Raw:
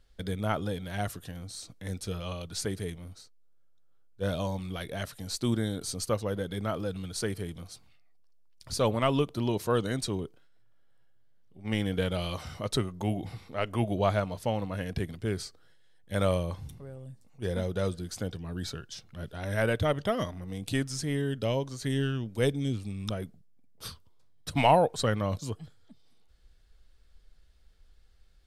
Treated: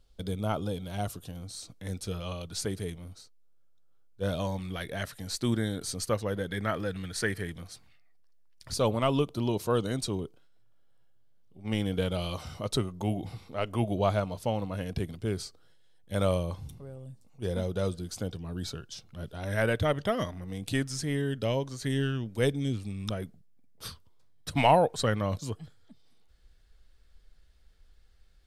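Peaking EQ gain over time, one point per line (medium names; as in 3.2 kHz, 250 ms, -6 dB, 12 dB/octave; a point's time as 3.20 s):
peaking EQ 1.8 kHz 0.54 oct
-11.5 dB
from 1.43 s -2.5 dB
from 4.39 s +4.5 dB
from 6.52 s +13 dB
from 7.51 s +6 dB
from 8.74 s -6 dB
from 19.47 s +1.5 dB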